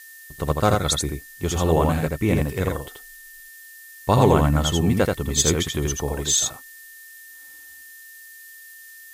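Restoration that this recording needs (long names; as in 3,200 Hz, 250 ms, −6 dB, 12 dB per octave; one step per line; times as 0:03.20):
notch filter 1,800 Hz, Q 30
noise reduction from a noise print 23 dB
echo removal 82 ms −3.5 dB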